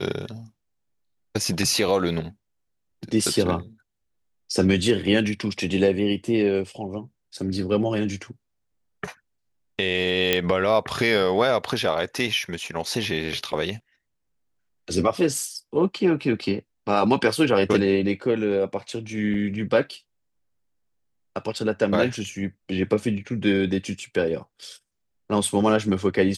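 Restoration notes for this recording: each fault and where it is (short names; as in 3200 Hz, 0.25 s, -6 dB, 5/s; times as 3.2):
10.33 pop -4 dBFS
19.34 gap 3.2 ms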